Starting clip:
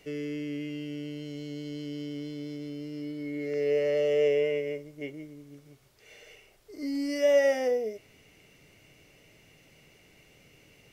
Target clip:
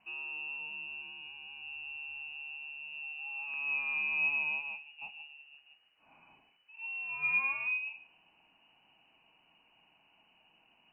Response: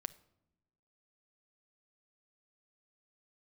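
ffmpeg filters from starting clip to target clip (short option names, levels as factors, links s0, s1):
-filter_complex "[0:a]asettb=1/sr,asplit=3[s0][s1][s2];[s0]atrim=end=1.014[s3];[s1]atrim=start=1.01:end=1.62,asetpts=PTS-STARTPTS,afade=t=in:d=0.004:c=qsin,afade=t=out:st=0.606:d=0.004:c=qsin,aecho=1:1:1.5:0.52,atrim=end_sample=26901[s4];[s2]atrim=start=1.616[s5];[s3][s4]acrossfade=d=0.004:c1=hsin:c2=qsin[s6];[s6][s5]acrossfade=d=0.004:c1=qsin:c2=hsin[s7];[1:a]atrim=start_sample=2205[s8];[s7][s8]afir=irnorm=-1:irlink=0,lowpass=f=2600:t=q:w=0.5098,lowpass=f=2600:t=q:w=0.6013,lowpass=f=2600:t=q:w=0.9,lowpass=f=2600:t=q:w=2.563,afreqshift=-3000,volume=0.531"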